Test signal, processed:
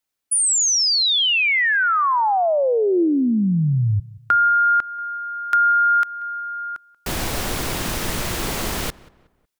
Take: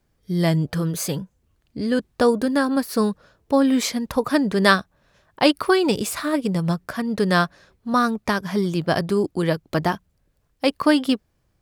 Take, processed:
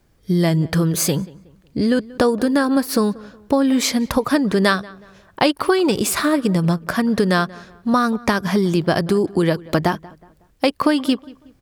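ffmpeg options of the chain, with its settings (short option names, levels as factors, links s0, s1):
-filter_complex "[0:a]equalizer=f=340:w=7.2:g=3,acompressor=threshold=0.0708:ratio=4,asplit=2[s0][s1];[s1]adelay=184,lowpass=f=2400:p=1,volume=0.0891,asplit=2[s2][s3];[s3]adelay=184,lowpass=f=2400:p=1,volume=0.38,asplit=2[s4][s5];[s5]adelay=184,lowpass=f=2400:p=1,volume=0.38[s6];[s0][s2][s4][s6]amix=inputs=4:normalize=0,volume=2.66"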